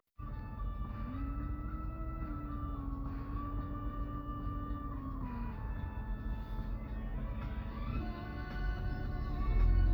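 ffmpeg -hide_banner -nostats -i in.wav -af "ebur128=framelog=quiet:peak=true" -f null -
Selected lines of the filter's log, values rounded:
Integrated loudness:
  I:         -41.0 LUFS
  Threshold: -50.9 LUFS
Loudness range:
  LRA:         1.9 LU
  Threshold: -61.7 LUFS
  LRA low:   -42.3 LUFS
  LRA high:  -40.5 LUFS
True peak:
  Peak:      -20.3 dBFS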